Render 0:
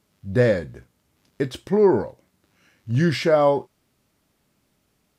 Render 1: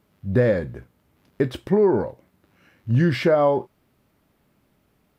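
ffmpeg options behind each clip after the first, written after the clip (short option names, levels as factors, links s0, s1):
-af "acompressor=threshold=0.112:ratio=4,equalizer=f=6800:w=0.57:g=-11,volume=1.68"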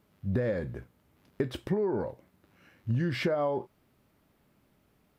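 -af "acompressor=threshold=0.0794:ratio=10,volume=0.708"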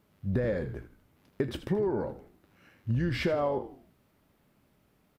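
-filter_complex "[0:a]asplit=5[s0][s1][s2][s3][s4];[s1]adelay=80,afreqshift=-54,volume=0.224[s5];[s2]adelay=160,afreqshift=-108,volume=0.0966[s6];[s3]adelay=240,afreqshift=-162,volume=0.0412[s7];[s4]adelay=320,afreqshift=-216,volume=0.0178[s8];[s0][s5][s6][s7][s8]amix=inputs=5:normalize=0"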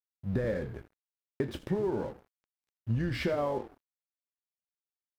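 -filter_complex "[0:a]asplit=2[s0][s1];[s1]adelay=27,volume=0.224[s2];[s0][s2]amix=inputs=2:normalize=0,aeval=exprs='sgn(val(0))*max(abs(val(0))-0.00316,0)':c=same,volume=0.841"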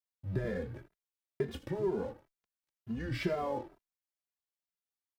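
-filter_complex "[0:a]asplit=2[s0][s1];[s1]adelay=2.5,afreqshift=2.1[s2];[s0][s2]amix=inputs=2:normalize=1"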